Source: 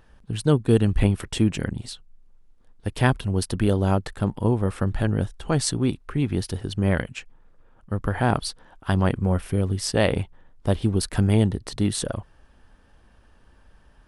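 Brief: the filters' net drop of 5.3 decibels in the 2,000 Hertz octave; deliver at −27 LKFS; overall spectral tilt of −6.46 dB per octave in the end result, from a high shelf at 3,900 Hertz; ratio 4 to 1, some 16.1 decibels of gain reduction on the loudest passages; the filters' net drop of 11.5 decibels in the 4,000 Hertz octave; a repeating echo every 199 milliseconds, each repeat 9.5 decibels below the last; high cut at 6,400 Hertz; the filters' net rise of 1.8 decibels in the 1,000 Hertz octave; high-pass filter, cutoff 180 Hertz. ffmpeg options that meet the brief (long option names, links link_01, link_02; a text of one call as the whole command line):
ffmpeg -i in.wav -af "highpass=180,lowpass=6400,equalizer=frequency=1000:width_type=o:gain=4.5,equalizer=frequency=2000:width_type=o:gain=-5.5,highshelf=frequency=3900:gain=-7.5,equalizer=frequency=4000:width_type=o:gain=-8,acompressor=threshold=-35dB:ratio=4,aecho=1:1:199|398|597|796:0.335|0.111|0.0365|0.012,volume=12.5dB" out.wav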